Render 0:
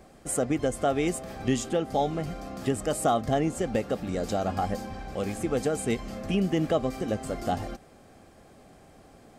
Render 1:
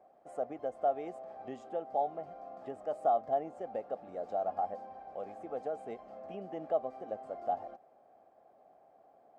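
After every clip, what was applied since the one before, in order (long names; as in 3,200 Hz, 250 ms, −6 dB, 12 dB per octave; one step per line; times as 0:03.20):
resonant band-pass 700 Hz, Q 3.5
level −2 dB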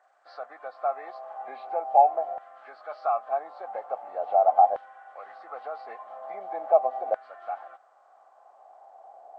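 hearing-aid frequency compression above 1,300 Hz 1.5 to 1
auto-filter high-pass saw down 0.42 Hz 690–1,600 Hz
level +8.5 dB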